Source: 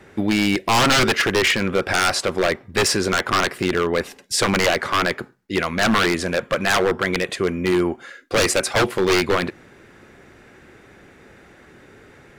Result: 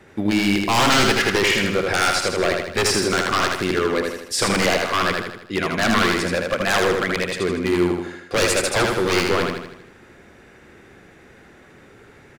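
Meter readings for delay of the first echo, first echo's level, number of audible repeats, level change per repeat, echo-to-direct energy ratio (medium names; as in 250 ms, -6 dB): 79 ms, -3.5 dB, 6, -6.0 dB, -2.5 dB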